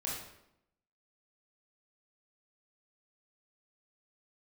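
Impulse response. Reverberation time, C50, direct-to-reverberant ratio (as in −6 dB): 0.80 s, 1.5 dB, −5.0 dB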